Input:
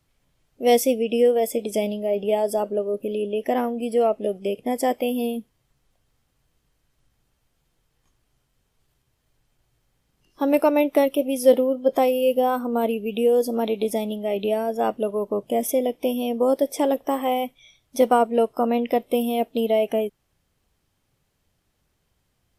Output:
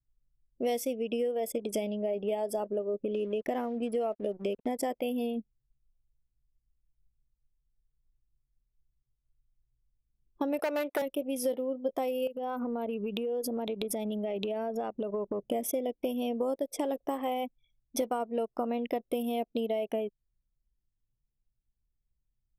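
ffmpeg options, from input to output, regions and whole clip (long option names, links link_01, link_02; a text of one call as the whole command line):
ffmpeg -i in.wav -filter_complex "[0:a]asettb=1/sr,asplit=3[link_01][link_02][link_03];[link_01]atrim=end=3.154[link_04];[link_02]atrim=start=3.15:end=4.75,asetpts=PTS-STARTPTS,afade=type=in:duration=0.004:curve=qsin,afade=type=out:start_time=1.596:duration=0.004:curve=qsin,aeval=exprs='val(0)*gte(abs(val(0)),0.0075)':channel_layout=same,acompressor=mode=upward:threshold=-30dB:ratio=2.5:attack=3.2:release=140:knee=2.83:detection=peak[link_05];[link_03]atrim=start=4.746[link_06];[link_04][link_05]acrossfade=duration=0.004:curve1=hsin:curve2=qsin[link_07];[link_07][link_06]acrossfade=duration=0.004:curve1=qsin:curve2=hsin,asettb=1/sr,asplit=3[link_08][link_09][link_10];[link_08]atrim=end=10.594[link_11];[link_09]atrim=start=10.59:end=11.02,asetpts=PTS-STARTPTS,afade=type=in:duration=0.004:curve=qsin,afade=type=out:start_time=0.426:duration=0.004:curve=qsin,acontrast=51,aeval=exprs='0.398*(abs(mod(val(0)/0.398+3,4)-2)-1)':channel_layout=same,highpass=380[link_12];[link_10]atrim=start=11.016[link_13];[link_11][link_12]acrossfade=duration=0.004:curve1=hsin:curve2=qsin[link_14];[link_14][link_13]acrossfade=duration=0.004:curve1=qsin:curve2=hsin,asettb=1/sr,asplit=3[link_15][link_16][link_17];[link_15]atrim=end=12.274[link_18];[link_16]atrim=start=12.27:end=15.49,asetpts=PTS-STARTPTS,afade=type=in:duration=0.004:curve=qsin,afade=type=out:start_time=3.216:duration=0.004:curve=qsin,highshelf=frequency=3700:gain=6.5,acompressor=threshold=-27dB:ratio=16:attack=3.2:release=140:knee=1:detection=peak[link_19];[link_17]atrim=start=15.486[link_20];[link_18][link_19]acrossfade=duration=0.004:curve1=hsin:curve2=qsin[link_21];[link_21][link_20]acrossfade=duration=0.004:curve1=qsin:curve2=hsin,anlmdn=3.98,acompressor=threshold=-29dB:ratio=6" out.wav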